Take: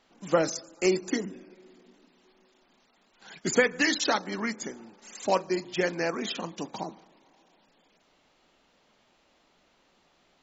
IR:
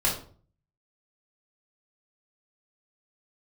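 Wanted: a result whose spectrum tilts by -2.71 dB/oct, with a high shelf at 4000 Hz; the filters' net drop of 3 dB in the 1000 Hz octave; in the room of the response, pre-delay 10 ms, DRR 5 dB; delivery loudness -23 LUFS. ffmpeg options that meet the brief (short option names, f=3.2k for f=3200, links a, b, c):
-filter_complex "[0:a]equalizer=f=1k:t=o:g=-4.5,highshelf=f=4k:g=6,asplit=2[a][b];[1:a]atrim=start_sample=2205,adelay=10[c];[b][c]afir=irnorm=-1:irlink=0,volume=-16dB[d];[a][d]amix=inputs=2:normalize=0,volume=4.5dB"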